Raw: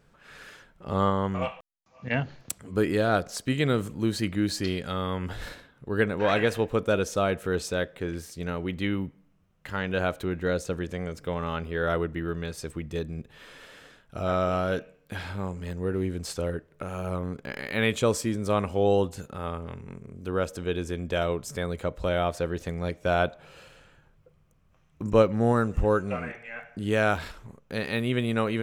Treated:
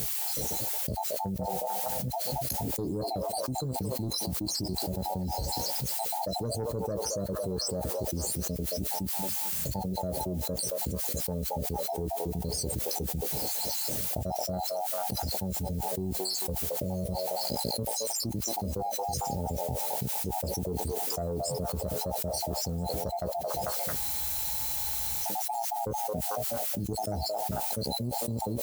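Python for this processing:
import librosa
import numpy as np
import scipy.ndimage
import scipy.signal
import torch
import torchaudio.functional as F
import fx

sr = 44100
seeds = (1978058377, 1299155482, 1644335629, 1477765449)

p1 = fx.spec_dropout(x, sr, seeds[0], share_pct=65)
p2 = fx.brickwall_bandstop(p1, sr, low_hz=920.0, high_hz=4000.0)
p3 = fx.tone_stack(p2, sr, knobs='5-5-5')
p4 = fx.dmg_noise_colour(p3, sr, seeds[1], colour='violet', level_db=-64.0)
p5 = scipy.signal.sosfilt(scipy.signal.butter(4, 53.0, 'highpass', fs=sr, output='sos'), p4)
p6 = fx.fold_sine(p5, sr, drive_db=9, ceiling_db=-27.5)
p7 = p5 + (p6 * 10.0 ** (-8.0 / 20.0))
p8 = fx.high_shelf(p7, sr, hz=2700.0, db=-10.0)
p9 = fx.doubler(p8, sr, ms=16.0, db=-8)
p10 = p9 + fx.echo_stepped(p9, sr, ms=222, hz=740.0, octaves=0.7, feedback_pct=70, wet_db=-5, dry=0)
p11 = fx.spec_freeze(p10, sr, seeds[2], at_s=23.98, hold_s=1.26)
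y = fx.env_flatten(p11, sr, amount_pct=100)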